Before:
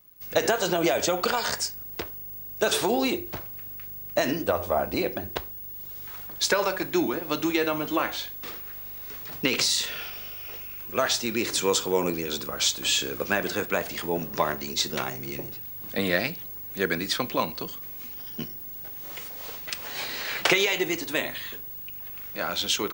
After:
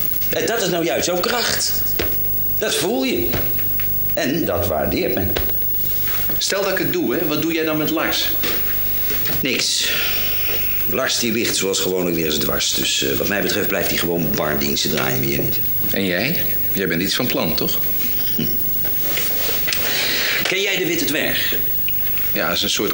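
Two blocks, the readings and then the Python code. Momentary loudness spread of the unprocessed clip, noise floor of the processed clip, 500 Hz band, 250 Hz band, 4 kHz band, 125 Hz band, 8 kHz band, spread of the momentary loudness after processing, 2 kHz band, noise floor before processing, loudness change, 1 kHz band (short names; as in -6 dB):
12 LU, -20 dBFS, +6.0 dB, +8.5 dB, +8.0 dB, +12.0 dB, +7.5 dB, 3 LU, +7.5 dB, -39 dBFS, +11.0 dB, +3.0 dB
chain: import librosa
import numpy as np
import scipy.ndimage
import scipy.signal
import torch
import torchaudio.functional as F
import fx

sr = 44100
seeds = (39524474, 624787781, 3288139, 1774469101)

y = fx.peak_eq(x, sr, hz=960.0, db=-11.5, octaves=0.64)
y = fx.quant_dither(y, sr, seeds[0], bits=12, dither='none')
y = fx.echo_feedback(y, sr, ms=126, feedback_pct=56, wet_db=-22.5)
y = fx.env_flatten(y, sr, amount_pct=100)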